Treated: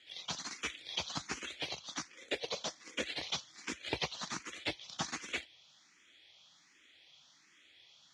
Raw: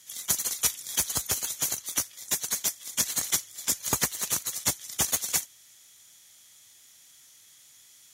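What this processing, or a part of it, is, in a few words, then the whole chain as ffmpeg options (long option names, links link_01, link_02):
barber-pole phaser into a guitar amplifier: -filter_complex "[0:a]asplit=2[link_01][link_02];[link_02]afreqshift=1.3[link_03];[link_01][link_03]amix=inputs=2:normalize=1,asoftclip=type=tanh:threshold=-24dB,highpass=79,equalizer=frequency=110:width_type=q:width=4:gain=-10,equalizer=frequency=310:width_type=q:width=4:gain=5,equalizer=frequency=2500:width_type=q:width=4:gain=4,lowpass=frequency=4400:width=0.5412,lowpass=frequency=4400:width=1.3066,asettb=1/sr,asplit=3[link_04][link_05][link_06];[link_04]atrim=end=2.084[link_07];[link_05]atrim=start=2.08:end=3.04,asetpts=PTS-STARTPTS,afade=type=in:duration=0.004:curve=qsin,afade=type=out:start_time=0.956:duration=0.004:curve=qsin,equalizer=frequency=500:width_type=o:width=0.64:gain=13[link_08];[link_06]atrim=start=3.036[link_09];[link_07][link_08]acrossfade=duration=0.004:curve1=hsin:curve2=qsin[link_10];[link_10][link_09]acrossfade=duration=0.004:curve1=qsin:curve2=hsin,volume=1.5dB"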